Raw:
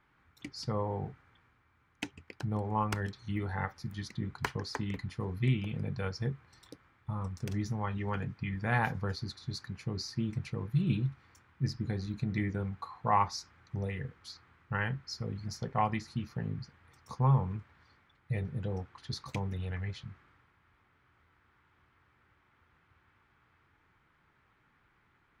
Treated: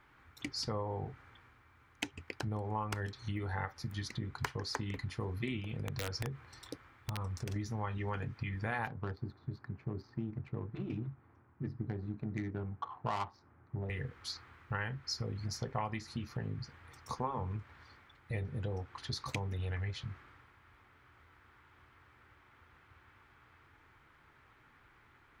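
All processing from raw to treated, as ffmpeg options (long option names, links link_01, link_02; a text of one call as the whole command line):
ffmpeg -i in.wav -filter_complex "[0:a]asettb=1/sr,asplit=3[link_01][link_02][link_03];[link_01]atrim=end=5.604[link_04];[link_02]atrim=start=5.6:end=7.56,asetpts=PTS-STARTPTS,afade=type=in:duration=0.004:curve=qsin,afade=type=out:start_time=1.956:duration=0.004:curve=qsin,acompressor=threshold=-37dB:ratio=3:attack=3.2:release=140:knee=1:detection=peak,aeval=exprs='(mod(35.5*val(0)+1,2)-1)/35.5':channel_layout=same[link_05];[link_03]atrim=start=7.556[link_06];[link_04][link_05]acrossfade=duration=0.004:curve1=hsin:curve2=qsin[link_07];[link_07][link_06]acrossfade=duration=0.004:curve1=qsin:curve2=hsin,asettb=1/sr,asplit=3[link_08][link_09][link_10];[link_08]atrim=end=8.874[link_11];[link_09]atrim=start=8.87:end=13.9,asetpts=PTS-STARTPTS,afade=type=in:duration=0.004:curve=qsin,afade=type=out:start_time=5.026:duration=0.004:curve=qsin,highpass=110,lowpass=6400,bandreject=frequency=500:width=8.3,adynamicsmooth=sensitivity=3:basefreq=780[link_12];[link_10]atrim=start=13.896[link_13];[link_11][link_12]acrossfade=duration=0.004:curve1=hsin:curve2=qsin[link_14];[link_14][link_13]acrossfade=duration=0.004:curve1=qsin:curve2=hsin,afftfilt=real='re*lt(hypot(re,im),0.316)':imag='im*lt(hypot(re,im),0.316)':win_size=1024:overlap=0.75,acompressor=threshold=-40dB:ratio=4,equalizer=frequency=180:width_type=o:width=0.47:gain=-8,volume=6dB" out.wav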